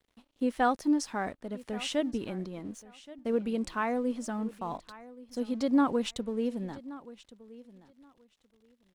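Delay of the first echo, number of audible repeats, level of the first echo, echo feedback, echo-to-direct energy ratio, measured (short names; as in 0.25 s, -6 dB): 1.126 s, 2, -18.5 dB, 17%, -18.5 dB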